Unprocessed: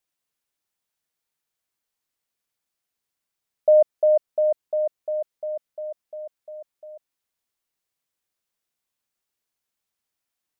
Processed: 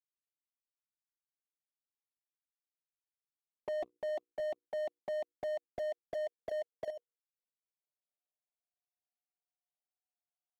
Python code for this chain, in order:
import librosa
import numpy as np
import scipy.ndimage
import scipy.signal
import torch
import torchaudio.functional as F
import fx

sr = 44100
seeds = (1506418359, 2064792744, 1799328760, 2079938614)

y = fx.filter_sweep_lowpass(x, sr, from_hz=330.0, to_hz=740.0, start_s=5.59, end_s=9.13, q=4.7)
y = fx.peak_eq(y, sr, hz=700.0, db=10.0, octaves=0.25)
y = fx.leveller(y, sr, passes=2)
y = fx.low_shelf(y, sr, hz=400.0, db=-11.0)
y = fx.hum_notches(y, sr, base_hz=60, count=8)
y = fx.leveller(y, sr, passes=2)
y = fx.env_flanger(y, sr, rest_ms=6.8, full_db=-22.0)
y = fx.transient(y, sr, attack_db=8, sustain_db=-9, at=(4.09, 6.9))
y = fx.level_steps(y, sr, step_db=13)
y = fx.slew_limit(y, sr, full_power_hz=23.0)
y = y * librosa.db_to_amplitude(-5.5)